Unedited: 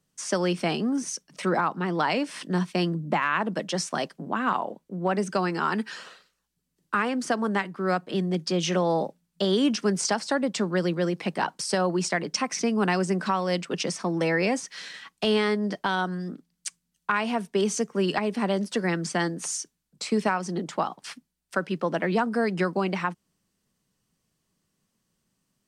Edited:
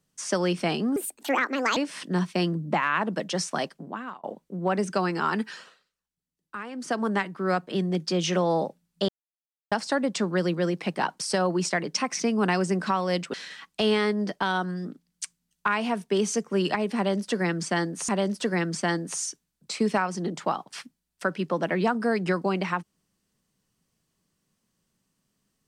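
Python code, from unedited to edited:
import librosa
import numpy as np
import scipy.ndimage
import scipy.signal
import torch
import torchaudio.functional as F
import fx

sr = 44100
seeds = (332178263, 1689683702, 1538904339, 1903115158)

y = fx.edit(x, sr, fx.speed_span(start_s=0.96, length_s=1.2, speed=1.49),
    fx.fade_out_span(start_s=4.01, length_s=0.62),
    fx.fade_down_up(start_s=5.83, length_s=1.59, db=-11.5, fade_s=0.32),
    fx.silence(start_s=9.48, length_s=0.63),
    fx.cut(start_s=13.73, length_s=1.04),
    fx.repeat(start_s=18.4, length_s=1.12, count=2), tone=tone)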